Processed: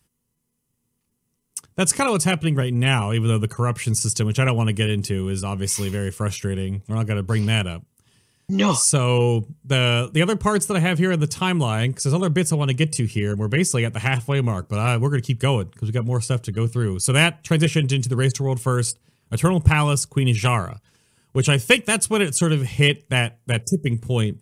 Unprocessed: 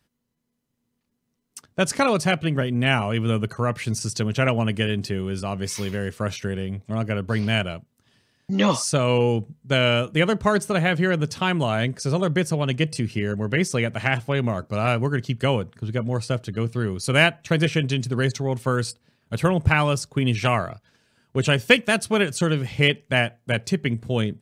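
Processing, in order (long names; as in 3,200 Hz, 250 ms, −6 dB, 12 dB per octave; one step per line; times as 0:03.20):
notch filter 2,300 Hz, Q 26
gain on a spectral selection 0:23.62–0:23.86, 710–5,000 Hz −29 dB
graphic EQ with 15 bands 250 Hz −7 dB, 630 Hz −10 dB, 1,600 Hz −8 dB, 4,000 Hz −7 dB, 10,000 Hz +8 dB
level +5.5 dB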